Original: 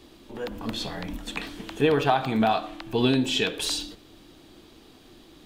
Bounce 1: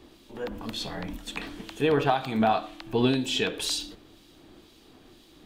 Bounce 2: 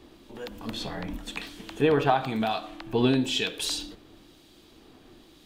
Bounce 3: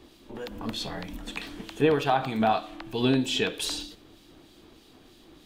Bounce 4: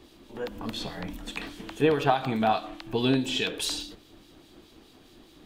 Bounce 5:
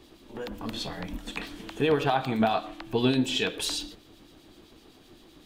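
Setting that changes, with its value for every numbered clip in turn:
two-band tremolo in antiphase, speed: 2, 1, 3.2, 4.8, 7.8 Hertz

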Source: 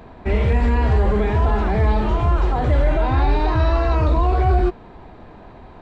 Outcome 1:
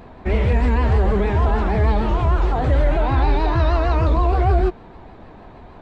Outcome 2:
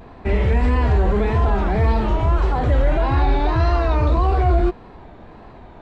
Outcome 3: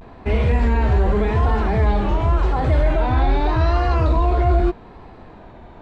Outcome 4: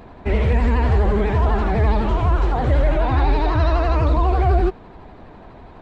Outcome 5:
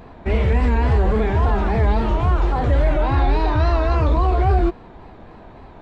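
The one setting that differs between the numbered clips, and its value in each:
pitch vibrato, speed: 6.5, 1.7, 0.84, 12, 3.6 Hertz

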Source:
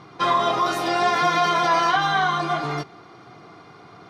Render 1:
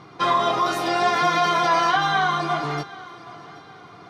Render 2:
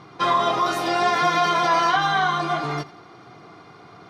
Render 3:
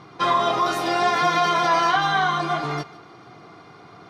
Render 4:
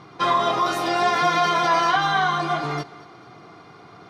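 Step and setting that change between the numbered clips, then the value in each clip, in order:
feedback echo with a high-pass in the loop, delay time: 775, 83, 149, 222 milliseconds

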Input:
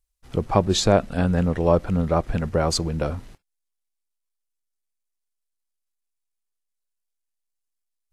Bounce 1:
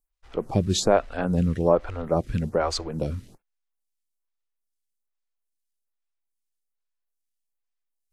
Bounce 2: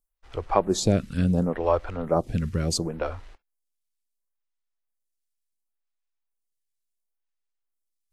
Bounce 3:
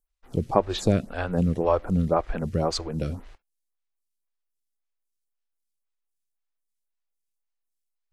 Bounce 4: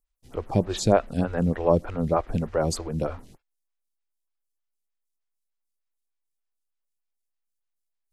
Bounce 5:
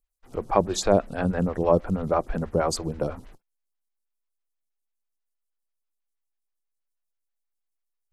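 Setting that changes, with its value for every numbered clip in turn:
phaser with staggered stages, speed: 1.2, 0.71, 1.9, 3.3, 6.2 Hertz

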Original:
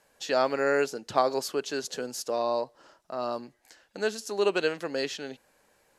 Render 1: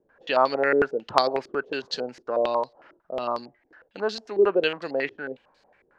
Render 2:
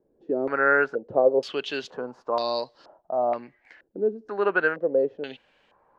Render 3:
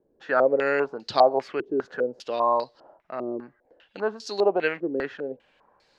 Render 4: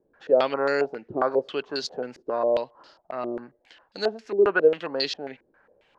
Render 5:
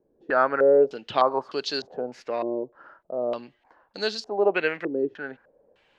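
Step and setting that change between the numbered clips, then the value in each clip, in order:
low-pass on a step sequencer, speed: 11, 2.1, 5, 7.4, 3.3 Hertz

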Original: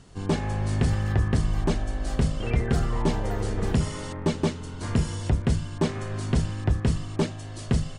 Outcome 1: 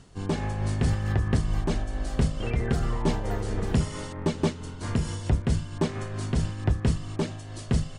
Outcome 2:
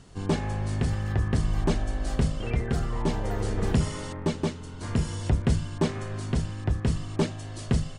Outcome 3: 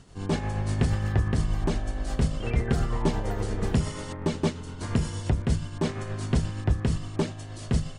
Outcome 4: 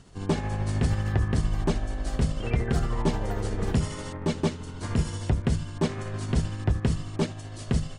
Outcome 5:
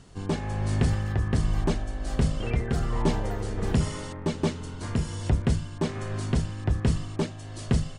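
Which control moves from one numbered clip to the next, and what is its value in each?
amplitude tremolo, speed: 4.5, 0.54, 8.5, 13, 1.3 Hertz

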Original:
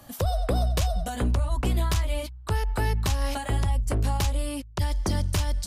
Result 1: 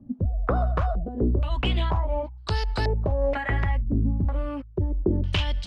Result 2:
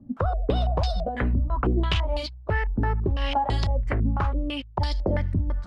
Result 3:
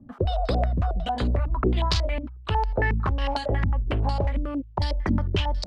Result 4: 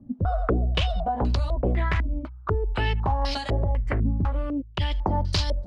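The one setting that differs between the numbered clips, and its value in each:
low-pass on a step sequencer, speed: 2.1, 6, 11, 4 Hertz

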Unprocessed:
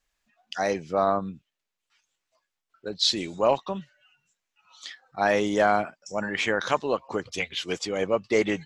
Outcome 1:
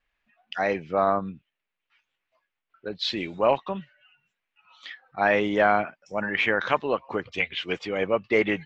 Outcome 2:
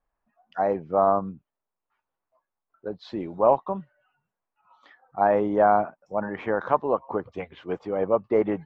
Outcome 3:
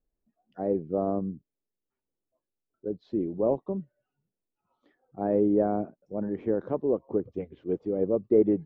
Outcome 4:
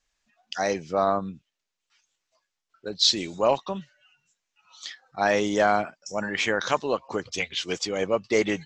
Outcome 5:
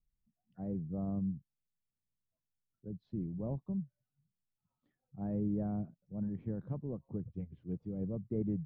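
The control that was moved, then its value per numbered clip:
low-pass with resonance, frequency: 2,500, 970, 380, 6,500, 150 Hertz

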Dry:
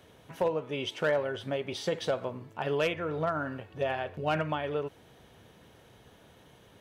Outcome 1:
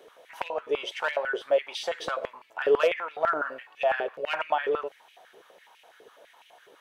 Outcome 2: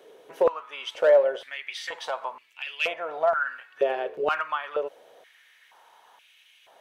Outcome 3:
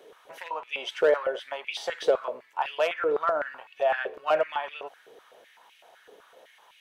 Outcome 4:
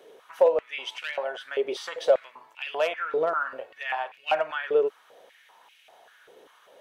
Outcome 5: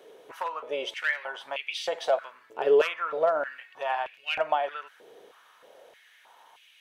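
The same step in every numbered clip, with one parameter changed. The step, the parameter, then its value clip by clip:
high-pass on a step sequencer, speed: 12, 2.1, 7.9, 5.1, 3.2 Hertz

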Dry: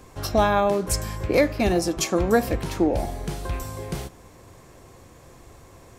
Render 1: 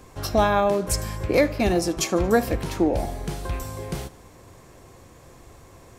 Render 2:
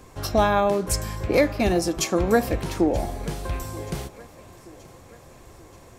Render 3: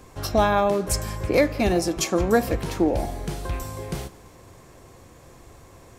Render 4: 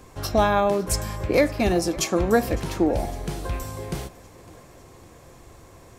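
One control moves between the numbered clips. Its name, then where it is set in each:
feedback echo with a high-pass in the loop, delay time: 76, 929, 169, 556 milliseconds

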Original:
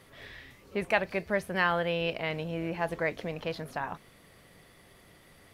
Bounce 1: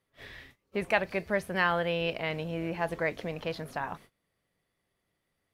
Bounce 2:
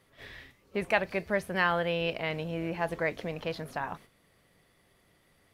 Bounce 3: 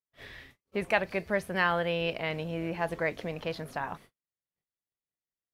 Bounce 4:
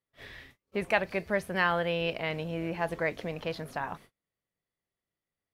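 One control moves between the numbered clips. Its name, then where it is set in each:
noise gate, range: −23, −9, −48, −35 decibels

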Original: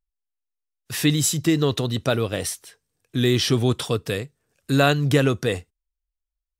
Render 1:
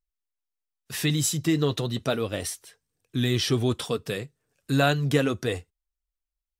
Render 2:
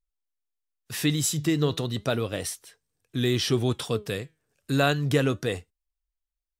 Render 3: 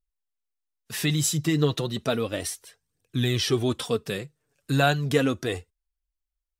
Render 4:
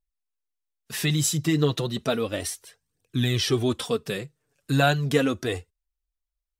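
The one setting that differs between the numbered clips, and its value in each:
flanger, regen: −54, +88, +24, −1%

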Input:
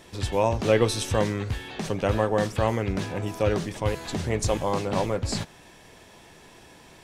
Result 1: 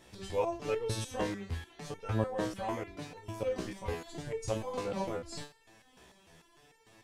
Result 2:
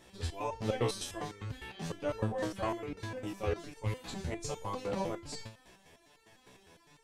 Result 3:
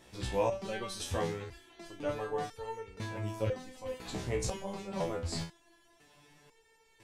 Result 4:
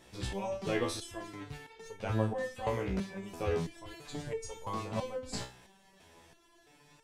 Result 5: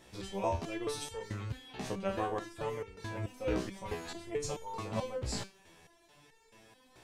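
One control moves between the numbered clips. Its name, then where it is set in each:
step-sequenced resonator, speed: 6.7, 9.9, 2, 3, 4.6 Hertz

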